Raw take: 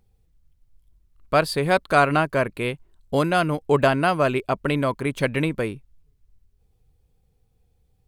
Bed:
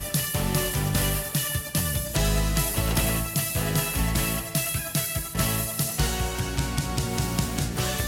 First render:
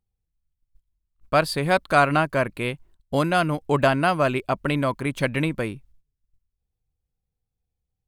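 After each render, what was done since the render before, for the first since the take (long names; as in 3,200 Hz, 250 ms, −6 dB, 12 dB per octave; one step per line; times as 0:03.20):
parametric band 430 Hz −5 dB 0.37 octaves
noise gate −50 dBFS, range −17 dB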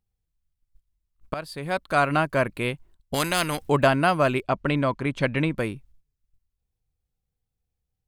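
0:01.34–0:02.42: fade in, from −16.5 dB
0:03.14–0:03.69: every bin compressed towards the loudest bin 2 to 1
0:04.43–0:05.58: high-frequency loss of the air 72 metres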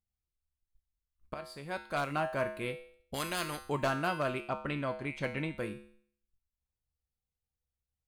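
wavefolder on the positive side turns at −13 dBFS
tuned comb filter 71 Hz, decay 0.56 s, harmonics odd, mix 80%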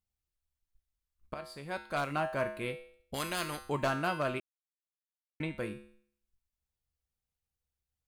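0:04.40–0:05.40: silence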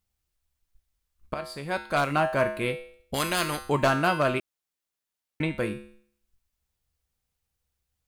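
level +8.5 dB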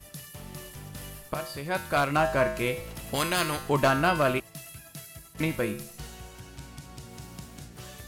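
mix in bed −17 dB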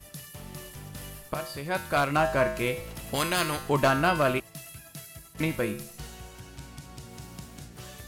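0:02.48–0:02.90: one scale factor per block 7 bits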